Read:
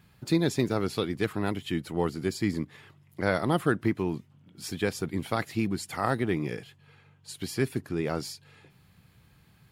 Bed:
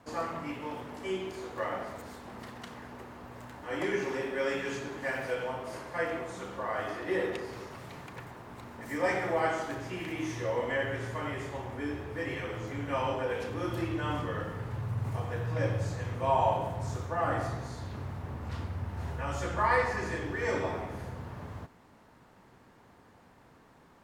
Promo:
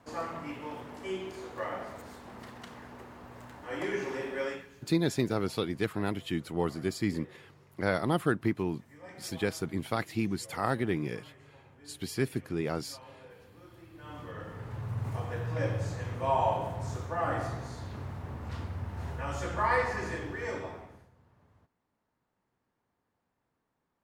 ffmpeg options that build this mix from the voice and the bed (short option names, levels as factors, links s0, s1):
-filter_complex "[0:a]adelay=4600,volume=0.75[s0];[1:a]volume=7.5,afade=t=out:st=4.42:d=0.25:silence=0.11885,afade=t=in:st=13.92:d=1.07:silence=0.105925,afade=t=out:st=20.08:d=1.01:silence=0.0841395[s1];[s0][s1]amix=inputs=2:normalize=0"